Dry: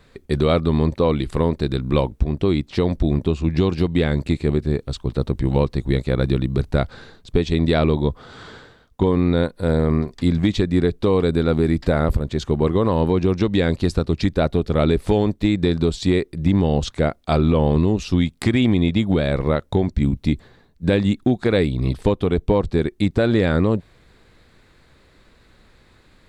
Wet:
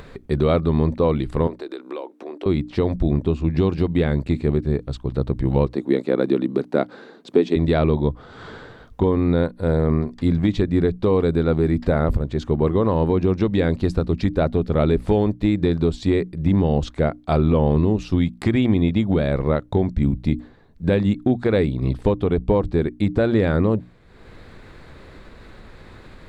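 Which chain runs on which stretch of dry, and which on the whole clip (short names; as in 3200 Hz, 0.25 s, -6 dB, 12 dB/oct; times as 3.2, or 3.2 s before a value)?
1.47–2.46 Chebyshev high-pass 320 Hz, order 4 + compressor 4:1, threshold -27 dBFS
5.66–7.56 HPF 260 Hz 24 dB/oct + low shelf 350 Hz +11 dB
whole clip: high shelf 2900 Hz -10.5 dB; notches 60/120/180/240/300 Hz; upward compressor, threshold -30 dBFS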